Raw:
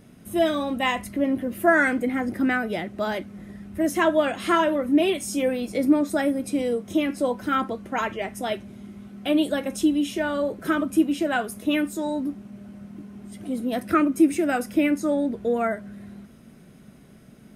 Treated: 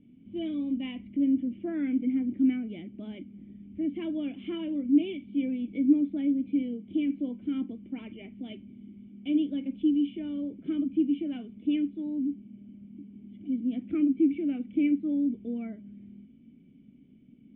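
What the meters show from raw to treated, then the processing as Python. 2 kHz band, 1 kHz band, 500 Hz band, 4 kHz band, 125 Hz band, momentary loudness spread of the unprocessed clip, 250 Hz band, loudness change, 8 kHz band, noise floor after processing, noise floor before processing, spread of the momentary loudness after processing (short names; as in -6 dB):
-22.5 dB, under -25 dB, -16.0 dB, -14.0 dB, n/a, 17 LU, -3.0 dB, -5.5 dB, under -40 dB, -55 dBFS, -49 dBFS, 19 LU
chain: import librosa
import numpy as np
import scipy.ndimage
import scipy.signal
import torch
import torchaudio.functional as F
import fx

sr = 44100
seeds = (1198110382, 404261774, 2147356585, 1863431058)

y = fx.formant_cascade(x, sr, vowel='i')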